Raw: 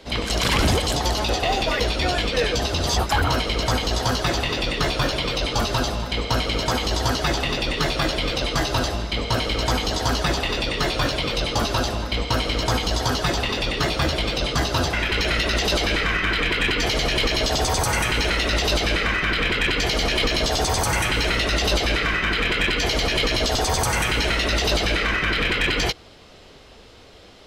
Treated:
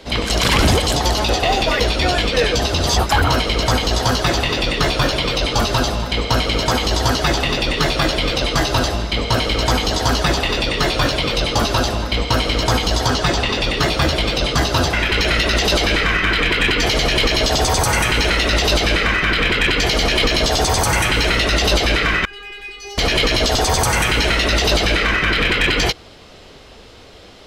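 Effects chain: 13.07–13.63 s: peaking EQ 12 kHz -14 dB 0.29 oct; 22.25–22.98 s: inharmonic resonator 400 Hz, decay 0.42 s, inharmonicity 0.002; trim +5 dB

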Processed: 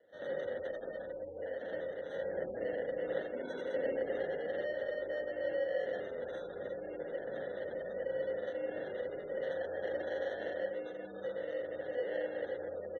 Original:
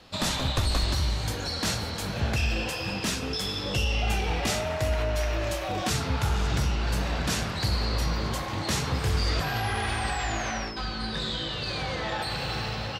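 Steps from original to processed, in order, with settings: bass shelf 180 Hz -6.5 dB; feedback comb 110 Hz, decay 1 s, harmonics odd, mix 80%; frequency-shifting echo 122 ms, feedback 39%, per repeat -56 Hz, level -14 dB; frequency shift -24 Hz; reverberation RT60 0.20 s, pre-delay 81 ms, DRR -4 dB; wavefolder -22.5 dBFS; high-order bell 4.1 kHz +8 dB 2.7 oct, from 2.09 s +15 dB, from 4.39 s +8.5 dB; sample-and-hold 18×; spectral gate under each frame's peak -20 dB strong; vowel filter e

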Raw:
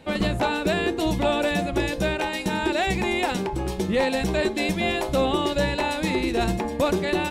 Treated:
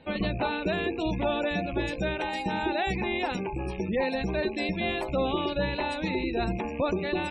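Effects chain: rattle on loud lows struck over -36 dBFS, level -25 dBFS; spectral gate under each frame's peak -25 dB strong; 2.27–2.88 s: whistle 810 Hz -28 dBFS; trim -5 dB

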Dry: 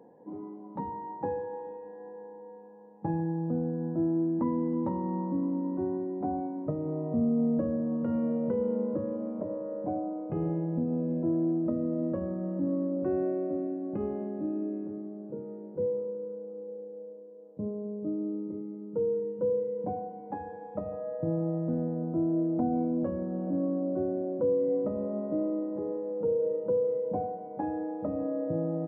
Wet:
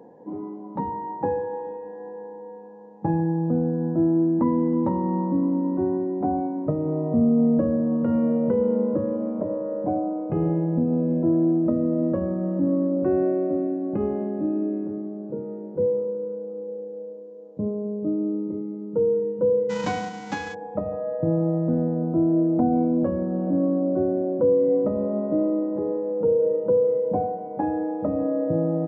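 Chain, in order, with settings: 19.69–20.53 s: formants flattened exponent 0.3; resampled via 16 kHz; trim +7.5 dB

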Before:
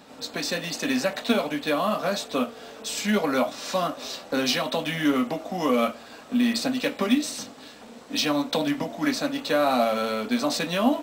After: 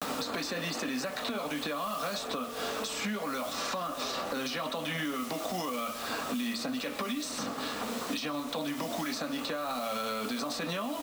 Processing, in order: gate with hold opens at -42 dBFS; peaking EQ 1.2 kHz +8.5 dB 0.35 oct; compression, threshold -31 dBFS, peak gain reduction 15 dB; peak limiter -30 dBFS, peak gain reduction 10.5 dB; bit crusher 9-bit; speakerphone echo 130 ms, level -13 dB; three bands compressed up and down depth 100%; trim +3.5 dB

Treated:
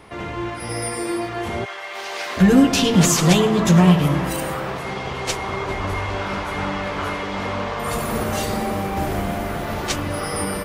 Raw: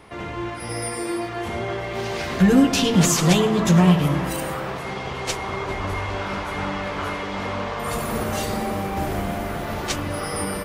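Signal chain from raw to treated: 1.64–2.36 s: high-pass 1.2 kHz -> 550 Hz 12 dB/octave; trim +2 dB

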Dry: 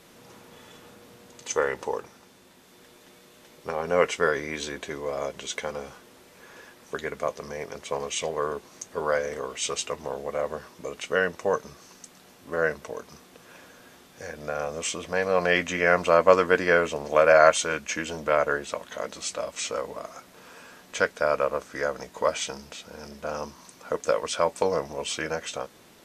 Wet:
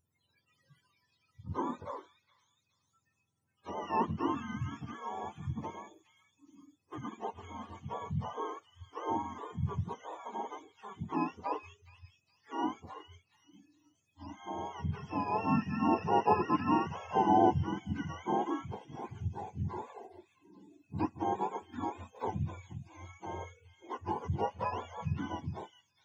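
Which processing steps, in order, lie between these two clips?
spectrum inverted on a logarithmic axis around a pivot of 690 Hz; spectral noise reduction 25 dB; repeats whose band climbs or falls 419 ms, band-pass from 3.1 kHz, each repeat 0.7 oct, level -7 dB; trim -8 dB

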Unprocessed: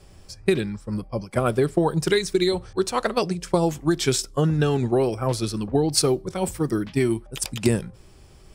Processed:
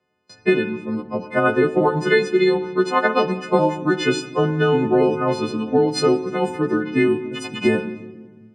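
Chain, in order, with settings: partials quantised in pitch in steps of 3 st; Chebyshev band-pass 210–1900 Hz, order 2; gate with hold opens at -42 dBFS; on a send: reverberation RT60 1.4 s, pre-delay 4 ms, DRR 11.5 dB; on the sum: trim +5 dB

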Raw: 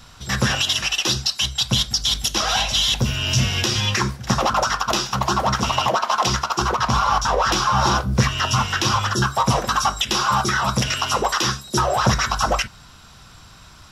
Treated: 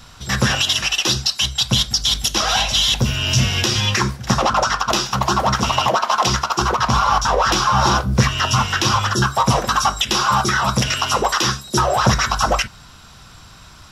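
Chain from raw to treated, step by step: 4.40–4.92 s: Bessel low-pass 9.6 kHz, order 2; trim +2.5 dB

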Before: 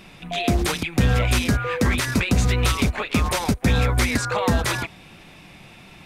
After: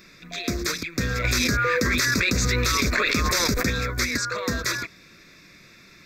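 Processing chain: tone controls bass -10 dB, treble +5 dB; static phaser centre 3 kHz, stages 6; 1.24–3.70 s: level flattener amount 100%

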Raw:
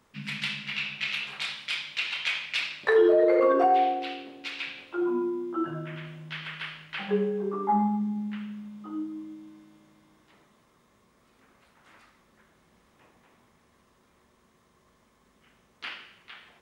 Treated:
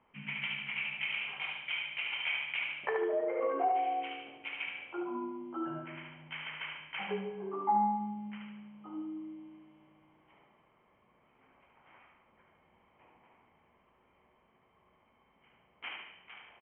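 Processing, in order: compression 3:1, threshold -26 dBFS, peak gain reduction 7.5 dB; rippled Chebyshev low-pass 3.2 kHz, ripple 9 dB; feedback delay 73 ms, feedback 43%, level -5 dB

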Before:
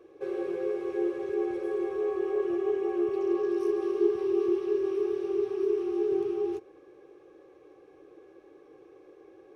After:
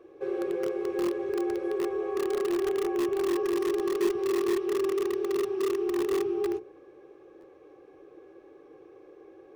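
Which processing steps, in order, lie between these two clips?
treble shelf 3 kHz -5.5 dB; hum notches 60/120/180/240/300/360/420/480 Hz; in parallel at -9 dB: integer overflow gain 24 dB; on the sum: buffer glitch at 7.40 s, samples 512, times 2

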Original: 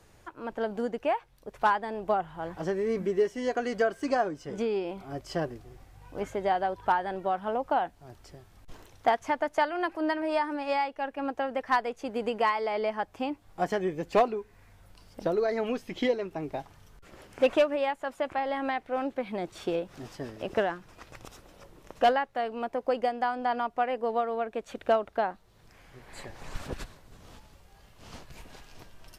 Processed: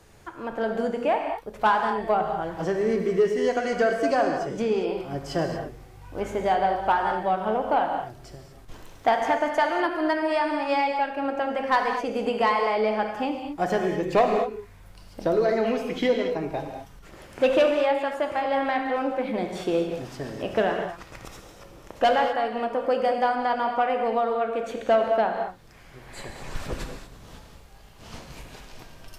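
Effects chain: gated-style reverb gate 260 ms flat, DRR 3 dB; saturation -14.5 dBFS, distortion -23 dB; trim +4 dB

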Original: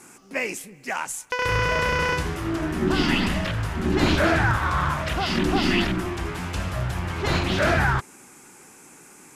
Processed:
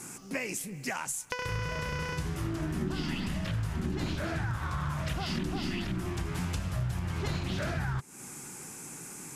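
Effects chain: tone controls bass +5 dB, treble +6 dB; compression 12:1, threshold -31 dBFS, peak gain reduction 18.5 dB; peaking EQ 140 Hz +6 dB 0.75 oct

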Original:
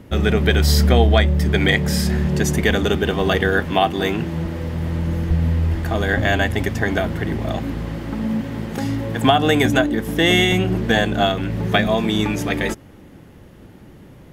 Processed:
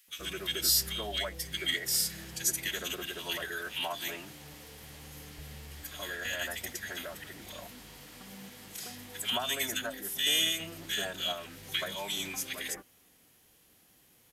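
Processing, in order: pre-emphasis filter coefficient 0.97; formant-preserving pitch shift -2 st; bands offset in time highs, lows 80 ms, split 1.6 kHz

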